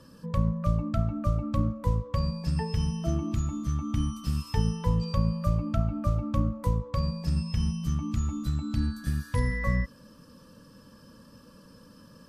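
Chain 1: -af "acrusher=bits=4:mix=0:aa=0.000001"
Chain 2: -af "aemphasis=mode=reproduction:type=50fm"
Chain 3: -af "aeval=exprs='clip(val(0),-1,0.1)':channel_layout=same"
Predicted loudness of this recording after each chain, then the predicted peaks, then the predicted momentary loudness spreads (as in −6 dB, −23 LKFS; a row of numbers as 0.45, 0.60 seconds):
−28.5, −29.0, −29.5 LKFS; −14.0, −12.5, −13.0 dBFS; 3, 3, 3 LU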